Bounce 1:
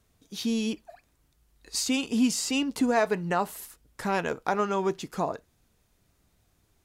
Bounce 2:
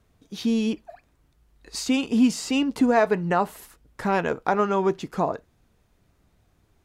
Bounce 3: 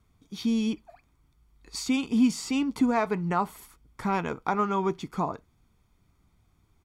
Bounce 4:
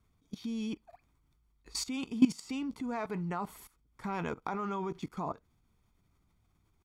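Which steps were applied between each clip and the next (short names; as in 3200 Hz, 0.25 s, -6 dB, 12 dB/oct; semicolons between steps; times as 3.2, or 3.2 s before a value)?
high shelf 3600 Hz -10.5 dB; gain +5 dB
comb 0.9 ms, depth 50%; gain -4.5 dB
level quantiser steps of 18 dB; gain +1 dB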